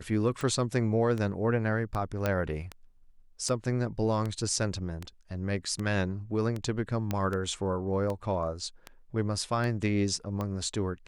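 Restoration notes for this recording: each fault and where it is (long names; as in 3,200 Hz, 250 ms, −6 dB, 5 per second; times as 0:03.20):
scratch tick 78 rpm
0:02.26: click −14 dBFS
0:07.11: click −16 dBFS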